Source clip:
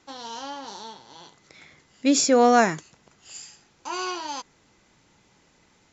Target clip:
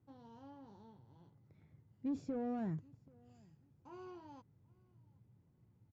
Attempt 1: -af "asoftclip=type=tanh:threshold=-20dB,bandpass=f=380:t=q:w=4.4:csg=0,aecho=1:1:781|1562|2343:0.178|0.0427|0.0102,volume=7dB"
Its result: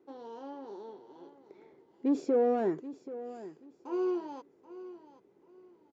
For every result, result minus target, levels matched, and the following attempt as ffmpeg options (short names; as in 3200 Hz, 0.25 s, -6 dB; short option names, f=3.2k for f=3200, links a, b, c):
125 Hz band -17.0 dB; echo-to-direct +12 dB
-af "asoftclip=type=tanh:threshold=-20dB,bandpass=f=110:t=q:w=4.4:csg=0,aecho=1:1:781|1562|2343:0.178|0.0427|0.0102,volume=7dB"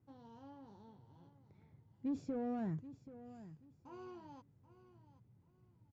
echo-to-direct +12 dB
-af "asoftclip=type=tanh:threshold=-20dB,bandpass=f=110:t=q:w=4.4:csg=0,aecho=1:1:781|1562:0.0447|0.0107,volume=7dB"